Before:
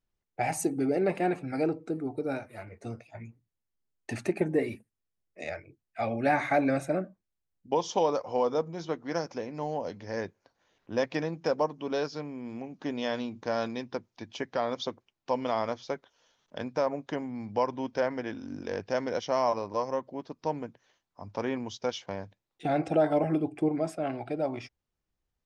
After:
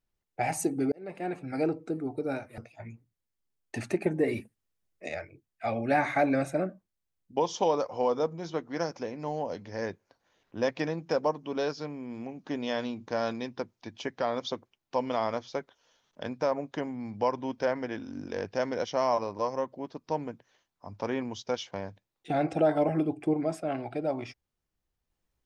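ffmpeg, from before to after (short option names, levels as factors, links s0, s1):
-filter_complex "[0:a]asplit=5[s0][s1][s2][s3][s4];[s0]atrim=end=0.92,asetpts=PTS-STARTPTS,afade=t=out:st=0.916:d=0.004:c=hsin[s5];[s1]atrim=start=0.92:end=2.582,asetpts=PTS-STARTPTS,afade=t=in:d=0.7[s6];[s2]atrim=start=2.928:end=4.632[s7];[s3]atrim=start=4.628:end=5.432,asetpts=PTS-STARTPTS,volume=1.5[s8];[s4]atrim=start=5.428[s9];[s5][s6]concat=n=2:v=0:a=1[s10];[s10][s7]acrossfade=d=0.004:c1=hsin:c2=hsin[s11];[s11][s8]acrossfade=d=0.004:c1=hsin:c2=hsin[s12];[s12][s9]acrossfade=d=0.004:c1=hsin:c2=hsin"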